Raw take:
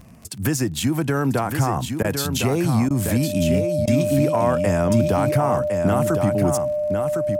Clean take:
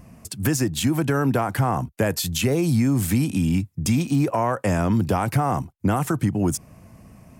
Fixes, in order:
click removal
notch filter 600 Hz, Q 30
repair the gap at 0:02.03/0:02.89/0:03.86, 13 ms
echo removal 1,058 ms −6.5 dB

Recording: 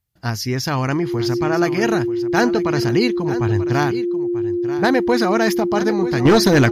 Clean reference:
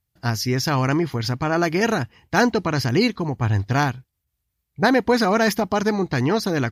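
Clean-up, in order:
clipped peaks rebuilt −6.5 dBFS
notch filter 350 Hz, Q 30
echo removal 938 ms −13.5 dB
level correction −10 dB, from 0:06.25

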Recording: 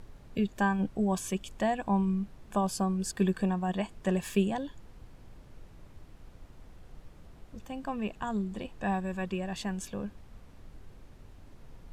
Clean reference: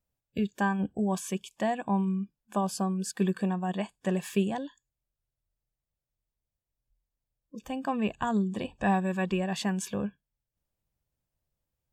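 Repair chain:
0:04.98–0:05.10: high-pass filter 140 Hz 24 dB per octave
0:07.52–0:07.64: high-pass filter 140 Hz 24 dB per octave
noise reduction from a noise print 30 dB
level 0 dB, from 0:07.26 +5 dB

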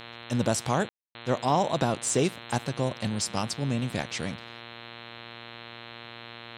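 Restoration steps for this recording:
hum removal 117.1 Hz, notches 36
ambience match 0:00.89–0:01.15

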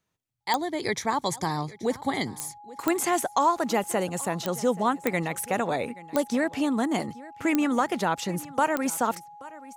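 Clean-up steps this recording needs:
click removal
notch filter 830 Hz, Q 30
echo removal 829 ms −19.5 dB

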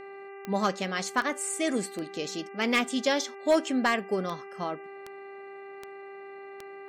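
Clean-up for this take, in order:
clipped peaks rebuilt −15 dBFS
click removal
hum removal 394.6 Hz, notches 7
notch filter 2,000 Hz, Q 30

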